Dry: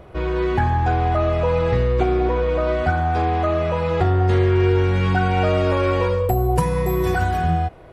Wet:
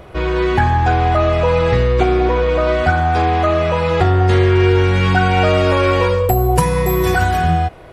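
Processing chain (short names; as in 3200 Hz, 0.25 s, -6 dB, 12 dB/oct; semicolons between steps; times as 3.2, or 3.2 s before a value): tilt shelf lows -3 dB, about 1400 Hz; gain +7 dB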